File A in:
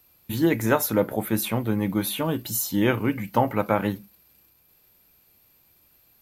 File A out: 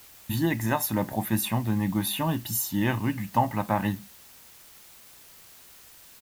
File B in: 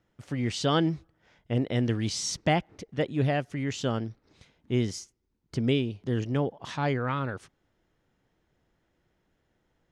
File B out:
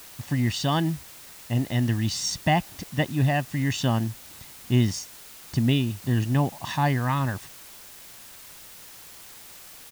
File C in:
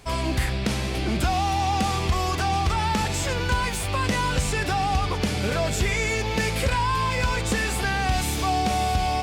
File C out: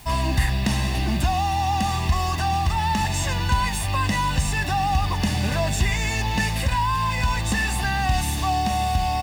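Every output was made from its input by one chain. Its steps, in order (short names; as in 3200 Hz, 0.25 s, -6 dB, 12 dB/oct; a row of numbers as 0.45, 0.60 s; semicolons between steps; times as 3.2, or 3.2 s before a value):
comb 1.1 ms, depth 72%; vocal rider within 4 dB 0.5 s; requantised 8-bit, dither triangular; normalise peaks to -9 dBFS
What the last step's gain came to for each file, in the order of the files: -3.5, +2.5, -1.5 dB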